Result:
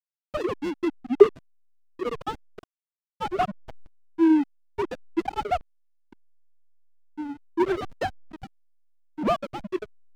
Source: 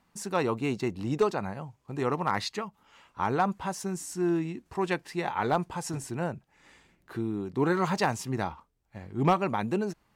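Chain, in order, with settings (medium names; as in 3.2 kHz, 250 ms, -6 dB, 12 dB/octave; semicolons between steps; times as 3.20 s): formants replaced by sine waves; frequency shift -27 Hz; hysteresis with a dead band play -22 dBFS; trim +5.5 dB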